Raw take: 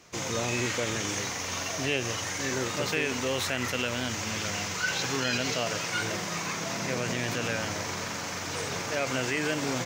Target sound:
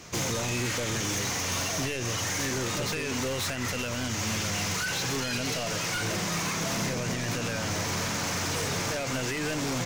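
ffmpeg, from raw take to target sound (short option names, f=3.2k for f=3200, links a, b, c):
-af "alimiter=limit=-24dB:level=0:latency=1:release=398,aeval=exprs='0.0631*(cos(1*acos(clip(val(0)/0.0631,-1,1)))-cos(1*PI/2))+0.0178*(cos(5*acos(clip(val(0)/0.0631,-1,1)))-cos(5*PI/2))':c=same,bass=f=250:g=5,treble=f=4k:g=2"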